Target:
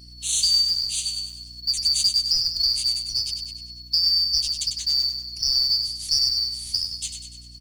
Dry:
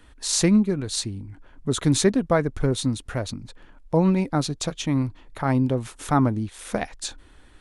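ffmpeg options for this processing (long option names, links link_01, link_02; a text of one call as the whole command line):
ffmpeg -i in.wav -filter_complex "[0:a]afftfilt=real='real(if(lt(b,272),68*(eq(floor(b/68),0)*1+eq(floor(b/68),1)*2+eq(floor(b/68),2)*3+eq(floor(b/68),3)*0)+mod(b,68),b),0)':imag='imag(if(lt(b,272),68*(eq(floor(b/68),0)*1+eq(floor(b/68),1)*2+eq(floor(b/68),2)*3+eq(floor(b/68),3)*0)+mod(b,68),b),0)':win_size=2048:overlap=0.75,firequalizer=gain_entry='entry(110,0);entry(170,-14);entry(330,-25);entry(1300,-28);entry(3300,0);entry(6700,0)':delay=0.05:min_phase=1,acrossover=split=81|980|3500[link_01][link_02][link_03][link_04];[link_02]acompressor=threshold=-59dB:ratio=4[link_05];[link_03]acompressor=threshold=-47dB:ratio=4[link_06];[link_04]acompressor=threshold=-21dB:ratio=4[link_07];[link_01][link_05][link_06][link_07]amix=inputs=4:normalize=0,acrusher=bits=6:mode=log:mix=0:aa=0.000001,aeval=exprs='val(0)+0.00355*(sin(2*PI*60*n/s)+sin(2*PI*2*60*n/s)/2+sin(2*PI*3*60*n/s)/3+sin(2*PI*4*60*n/s)/4+sin(2*PI*5*60*n/s)/5)':channel_layout=same,aecho=1:1:98|196|294|392|490|588:0.447|0.232|0.121|0.0628|0.0327|0.017,volume=2.5dB" out.wav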